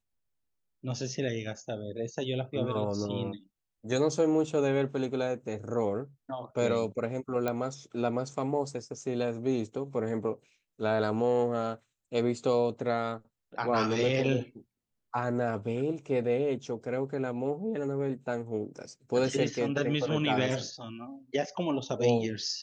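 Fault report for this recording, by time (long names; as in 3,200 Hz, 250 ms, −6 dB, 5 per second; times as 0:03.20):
0:07.48: click −17 dBFS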